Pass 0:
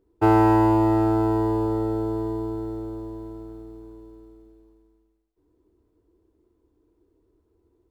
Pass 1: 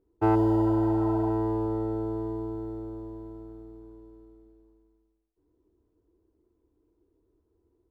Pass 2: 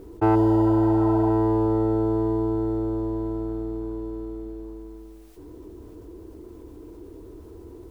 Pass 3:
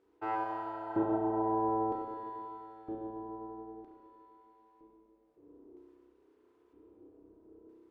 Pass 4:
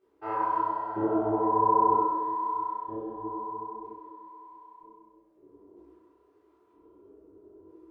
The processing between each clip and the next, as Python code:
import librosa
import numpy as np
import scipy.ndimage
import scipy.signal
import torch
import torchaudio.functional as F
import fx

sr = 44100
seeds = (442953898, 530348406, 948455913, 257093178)

y1 = fx.spec_repair(x, sr, seeds[0], start_s=0.38, length_s=0.89, low_hz=590.0, high_hz=2800.0, source='after')
y1 = fx.high_shelf(y1, sr, hz=2300.0, db=-9.0)
y1 = F.gain(torch.from_numpy(y1), -4.5).numpy()
y2 = fx.env_flatten(y1, sr, amount_pct=50)
y2 = F.gain(torch.from_numpy(y2), 3.0).numpy()
y3 = fx.filter_lfo_bandpass(y2, sr, shape='square', hz=0.52, low_hz=430.0, high_hz=1900.0, q=0.76)
y3 = fx.rev_spring(y3, sr, rt60_s=2.0, pass_ms=(31,), chirp_ms=65, drr_db=-2.5)
y3 = fx.upward_expand(y3, sr, threshold_db=-41.0, expansion=1.5)
y3 = F.gain(torch.from_numpy(y3), -6.5).numpy()
y4 = fx.rev_fdn(y3, sr, rt60_s=1.4, lf_ratio=0.95, hf_ratio=0.25, size_ms=15.0, drr_db=-7.0)
y4 = fx.detune_double(y4, sr, cents=53)